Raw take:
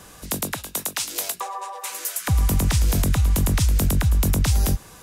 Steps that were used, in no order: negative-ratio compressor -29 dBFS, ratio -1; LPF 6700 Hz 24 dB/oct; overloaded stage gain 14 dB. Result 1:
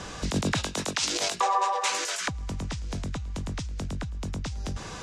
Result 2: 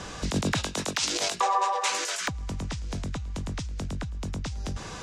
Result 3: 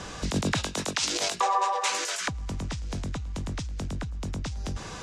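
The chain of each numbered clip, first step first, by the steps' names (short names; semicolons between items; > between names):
negative-ratio compressor > overloaded stage > LPF; negative-ratio compressor > LPF > overloaded stage; overloaded stage > negative-ratio compressor > LPF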